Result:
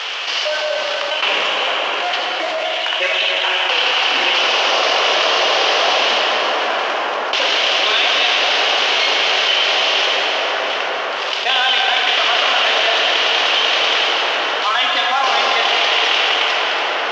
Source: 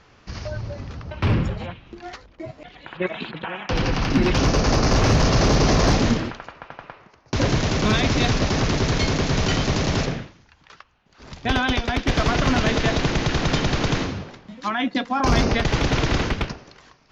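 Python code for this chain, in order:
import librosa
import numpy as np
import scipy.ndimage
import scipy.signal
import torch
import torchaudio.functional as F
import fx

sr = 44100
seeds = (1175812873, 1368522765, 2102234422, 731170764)

y = fx.cvsd(x, sr, bps=32000)
y = scipy.signal.sosfilt(scipy.signal.butter(4, 540.0, 'highpass', fs=sr, output='sos'), y)
y = fx.peak_eq(y, sr, hz=3000.0, db=14.0, octaves=0.56)
y = fx.rev_plate(y, sr, seeds[0], rt60_s=4.7, hf_ratio=0.5, predelay_ms=0, drr_db=-0.5)
y = fx.env_flatten(y, sr, amount_pct=70)
y = F.gain(torch.from_numpy(y), 2.0).numpy()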